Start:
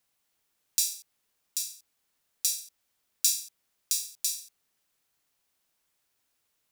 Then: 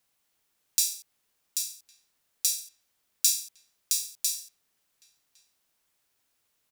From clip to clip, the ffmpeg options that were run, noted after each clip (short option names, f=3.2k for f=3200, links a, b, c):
-filter_complex "[0:a]asplit=2[a][b];[b]adelay=1108,volume=-17dB,highshelf=f=4k:g=-24.9[c];[a][c]amix=inputs=2:normalize=0,volume=1.5dB"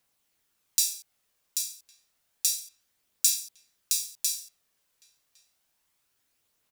-af "aphaser=in_gain=1:out_gain=1:delay=2.1:decay=0.23:speed=0.3:type=triangular"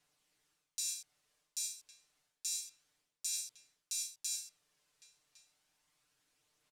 -af "lowpass=9.1k,aecho=1:1:6.7:0.75,areverse,acompressor=threshold=-33dB:ratio=16,areverse,volume=-2dB"